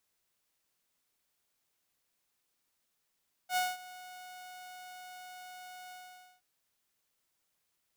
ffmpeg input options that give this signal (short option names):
-f lavfi -i "aevalsrc='0.0596*(2*mod(732*t,1)-1)':d=2.923:s=44100,afade=t=in:d=0.076,afade=t=out:st=0.076:d=0.204:silence=0.106,afade=t=out:st=2.43:d=0.493"